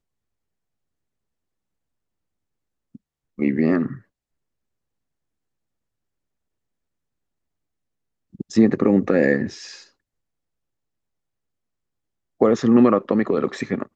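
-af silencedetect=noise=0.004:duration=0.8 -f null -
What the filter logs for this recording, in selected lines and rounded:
silence_start: 0.00
silence_end: 2.95 | silence_duration: 2.95
silence_start: 4.01
silence_end: 8.34 | silence_duration: 4.32
silence_start: 9.89
silence_end: 12.40 | silence_duration: 2.52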